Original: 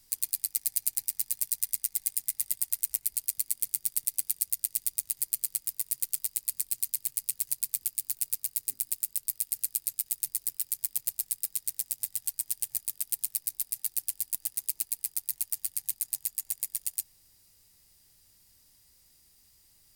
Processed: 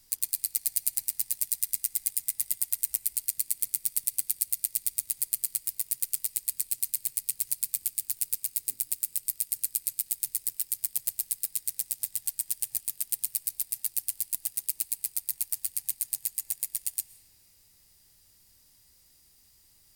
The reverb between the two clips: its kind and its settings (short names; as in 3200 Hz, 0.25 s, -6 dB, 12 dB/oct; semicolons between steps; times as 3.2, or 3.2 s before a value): digital reverb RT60 4.5 s, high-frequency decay 0.4×, pre-delay 80 ms, DRR 15 dB; gain +1 dB